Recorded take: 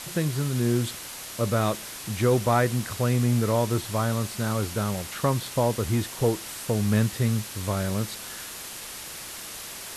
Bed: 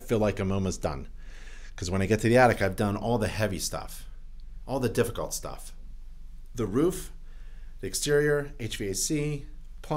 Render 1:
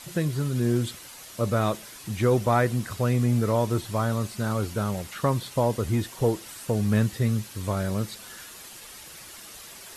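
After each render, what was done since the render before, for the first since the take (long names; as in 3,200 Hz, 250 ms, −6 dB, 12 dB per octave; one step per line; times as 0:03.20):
broadband denoise 8 dB, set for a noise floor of −39 dBFS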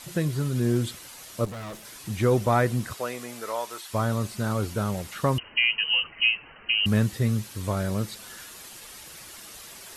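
0:01.45–0:01.85: tube saturation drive 35 dB, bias 0.55
0:02.92–0:03.93: high-pass filter 420 Hz → 1,100 Hz
0:05.38–0:06.86: voice inversion scrambler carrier 3,000 Hz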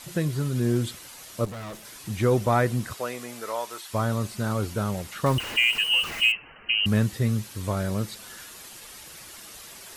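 0:05.26–0:06.32: converter with a step at zero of −30 dBFS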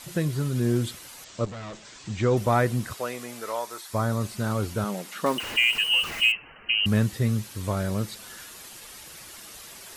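0:01.24–0:02.37: elliptic low-pass filter 7,700 Hz
0:03.59–0:04.21: parametric band 2,900 Hz −7.5 dB 0.42 octaves
0:04.84–0:05.43: linear-phase brick-wall high-pass 160 Hz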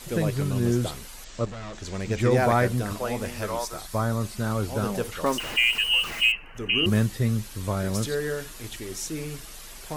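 mix in bed −5 dB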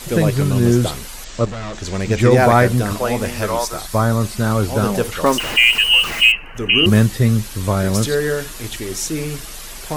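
level +9.5 dB
brickwall limiter −2 dBFS, peak gain reduction 2 dB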